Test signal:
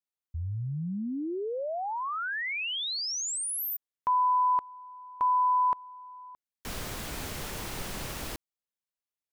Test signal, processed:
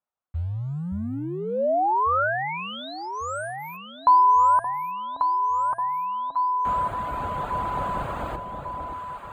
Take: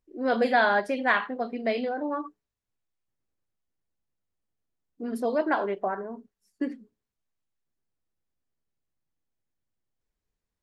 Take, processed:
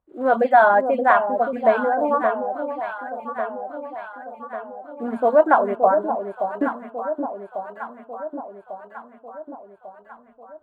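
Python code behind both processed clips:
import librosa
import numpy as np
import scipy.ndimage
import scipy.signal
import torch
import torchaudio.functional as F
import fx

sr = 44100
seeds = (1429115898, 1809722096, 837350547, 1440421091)

p1 = fx.block_float(x, sr, bits=5)
p2 = scipy.signal.sosfilt(scipy.signal.butter(2, 40.0, 'highpass', fs=sr, output='sos'), p1)
p3 = fx.dereverb_blind(p2, sr, rt60_s=0.67)
p4 = scipy.signal.lfilter(np.full(8, 1.0 / 8), 1.0, p3)
p5 = fx.low_shelf(p4, sr, hz=340.0, db=7.0)
p6 = fx.rider(p5, sr, range_db=3, speed_s=2.0)
p7 = fx.band_shelf(p6, sr, hz=890.0, db=11.0, octaves=1.7)
p8 = p7 + fx.echo_alternate(p7, sr, ms=573, hz=860.0, feedback_pct=73, wet_db=-6.0, dry=0)
y = p8 * 10.0 ** (-1.0 / 20.0)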